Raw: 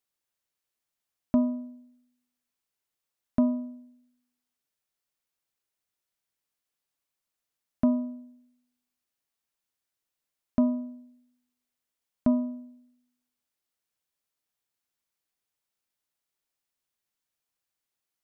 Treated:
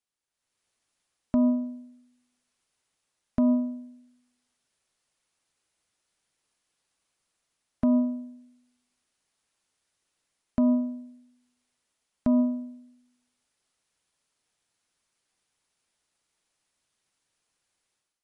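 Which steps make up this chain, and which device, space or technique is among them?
low-bitrate web radio (automatic gain control gain up to 12.5 dB; brickwall limiter −12.5 dBFS, peak gain reduction 10 dB; level −2.5 dB; MP3 48 kbit/s 44,100 Hz)

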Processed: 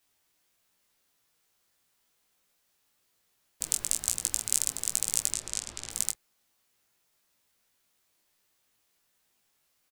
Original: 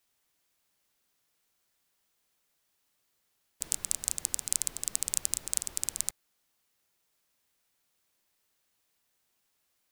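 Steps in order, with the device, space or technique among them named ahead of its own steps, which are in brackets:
double-tracked vocal (double-tracking delay 27 ms −13.5 dB; chorus effect 1.2 Hz, delay 17 ms, depth 2 ms)
0:05.32–0:05.90: low-pass filter 9,100 Hz → 4,100 Hz 12 dB per octave
level +6 dB

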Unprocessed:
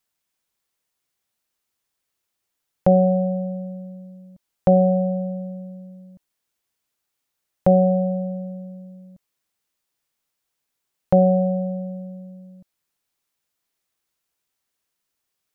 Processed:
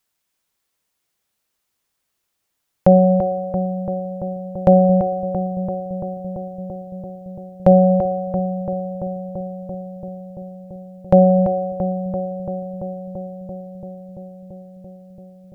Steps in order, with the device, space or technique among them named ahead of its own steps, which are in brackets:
dub delay into a spring reverb (feedback echo with a low-pass in the loop 338 ms, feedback 84%, low-pass 1,300 Hz, level −7 dB; spring reverb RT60 1.5 s, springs 58 ms, DRR 18.5 dB)
level +4 dB

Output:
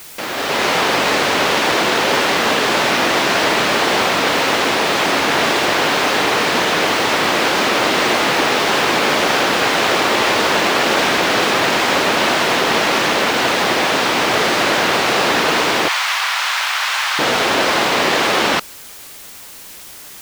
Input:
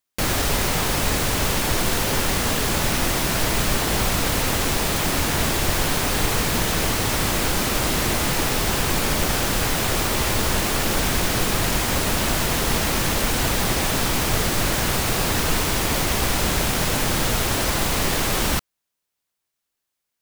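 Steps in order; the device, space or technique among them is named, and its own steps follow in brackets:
dictaphone (band-pass filter 340–4,000 Hz; automatic gain control gain up to 11.5 dB; tape wow and flutter; white noise bed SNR 20 dB)
0:15.88–0:17.19: inverse Chebyshev high-pass filter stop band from 280 Hz, stop band 60 dB

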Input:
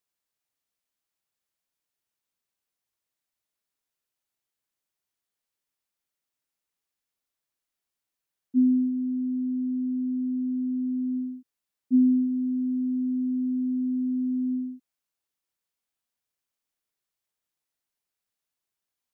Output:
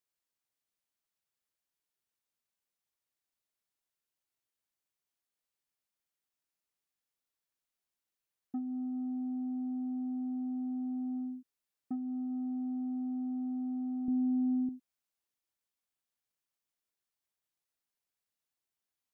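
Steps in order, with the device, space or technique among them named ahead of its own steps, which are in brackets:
drum-bus smash (transient designer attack +8 dB, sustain +1 dB; downward compressor 16 to 1, threshold −27 dBFS, peak gain reduction 17.5 dB; soft clipping −26.5 dBFS, distortion −21 dB)
0:14.08–0:14.69: spectral tilt −3 dB per octave
level −4.5 dB

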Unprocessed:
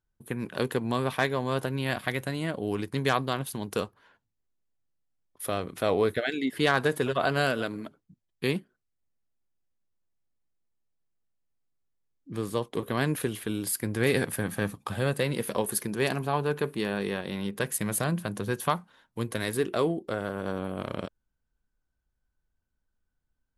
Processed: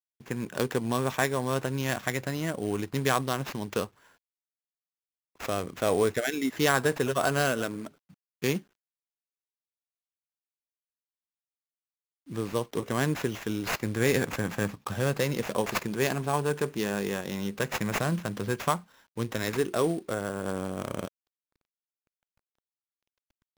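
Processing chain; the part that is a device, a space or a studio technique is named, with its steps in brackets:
early companding sampler (sample-rate reduction 9,100 Hz, jitter 0%; log-companded quantiser 6 bits)

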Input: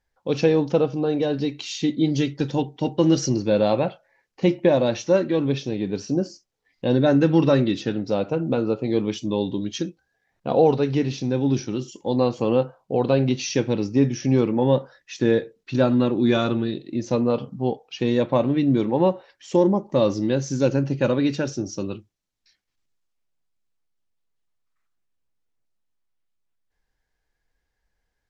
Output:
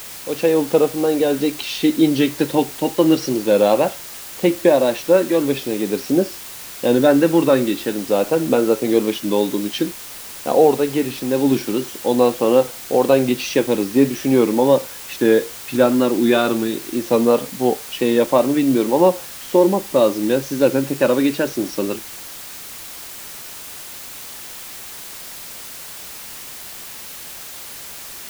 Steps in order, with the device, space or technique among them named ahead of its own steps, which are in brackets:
dictaphone (band-pass filter 270–3,900 Hz; automatic gain control; tape wow and flutter; white noise bed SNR 16 dB)
level −1 dB

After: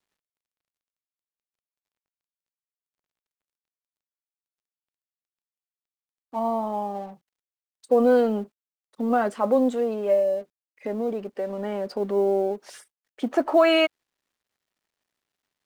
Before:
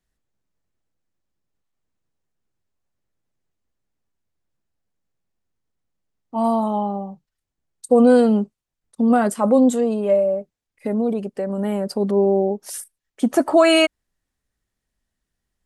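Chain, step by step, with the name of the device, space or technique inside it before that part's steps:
phone line with mismatched companding (band-pass filter 310–3,400 Hz; mu-law and A-law mismatch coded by mu)
0:06.39–0:06.95: parametric band 2,400 Hz −4.5 dB 2.7 octaves
level −3.5 dB

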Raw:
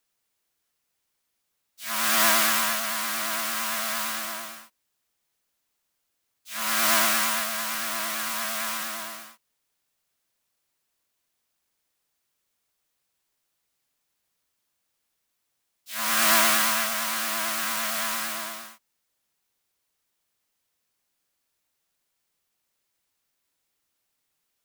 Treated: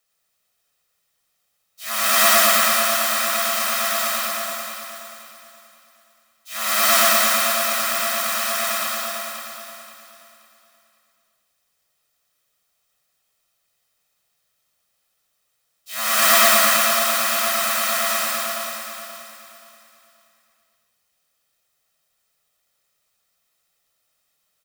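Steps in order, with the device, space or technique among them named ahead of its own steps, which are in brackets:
low-shelf EQ 160 Hz −6 dB
microphone above a desk (comb filter 1.6 ms, depth 55%; convolution reverb RT60 0.60 s, pre-delay 82 ms, DRR 0.5 dB)
repeating echo 528 ms, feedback 31%, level −9 dB
level +2.5 dB

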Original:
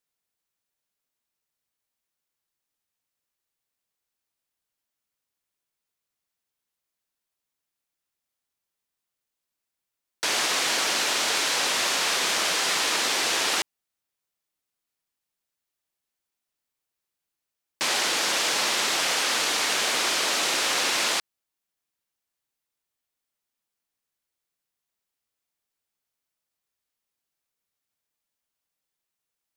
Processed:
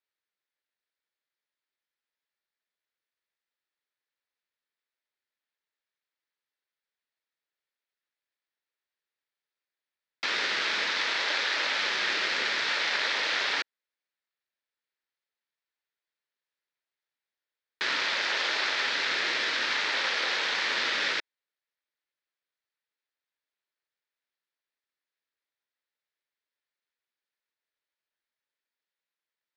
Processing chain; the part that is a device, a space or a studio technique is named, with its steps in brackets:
voice changer toy (ring modulator whose carrier an LFO sweeps 500 Hz, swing 75%, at 0.57 Hz; loudspeaker in its box 460–4,300 Hz, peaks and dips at 730 Hz −7 dB, 1,100 Hz −5 dB, 1,800 Hz +4 dB, 2,900 Hz −4 dB)
level +2 dB

